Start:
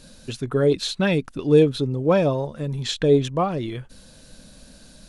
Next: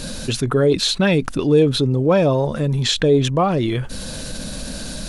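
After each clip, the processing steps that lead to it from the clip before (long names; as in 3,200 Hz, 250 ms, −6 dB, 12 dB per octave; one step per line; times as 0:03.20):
envelope flattener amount 50%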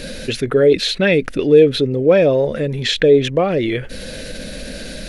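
octave-band graphic EQ 125/500/1,000/2,000/8,000 Hz −4/+9/−11/+11/−6 dB
level −1 dB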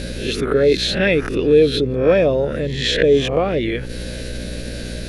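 peak hold with a rise ahead of every peak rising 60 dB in 0.47 s
hum with harmonics 60 Hz, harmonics 8, −27 dBFS −5 dB per octave
level −3 dB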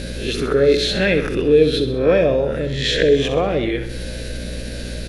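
repeating echo 65 ms, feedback 53%, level −9.5 dB
level −1 dB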